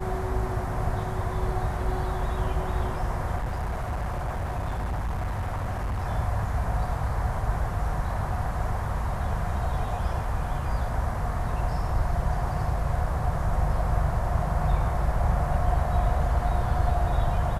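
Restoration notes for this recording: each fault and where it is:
3.36–6.04 s: clipped -25.5 dBFS

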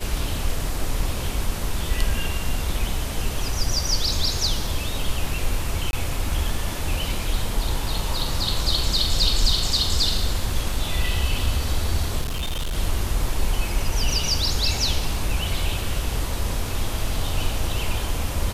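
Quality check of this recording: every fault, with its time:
4.67 s: dropout 2.2 ms
5.91–5.93 s: dropout 21 ms
12.21–12.78 s: clipped -22.5 dBFS

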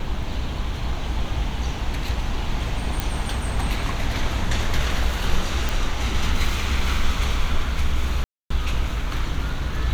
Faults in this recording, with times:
3.00 s: pop
5.69 s: pop
8.24–8.50 s: dropout 264 ms

